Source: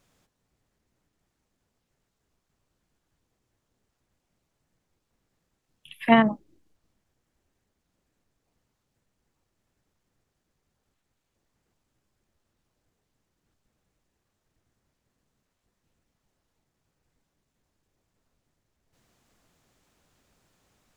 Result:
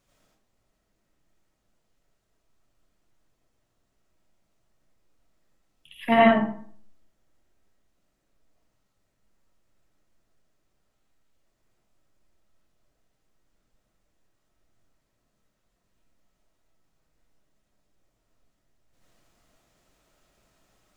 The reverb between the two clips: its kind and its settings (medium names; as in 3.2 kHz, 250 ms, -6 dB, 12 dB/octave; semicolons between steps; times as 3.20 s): algorithmic reverb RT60 0.53 s, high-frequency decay 0.6×, pre-delay 45 ms, DRR -6 dB; trim -5 dB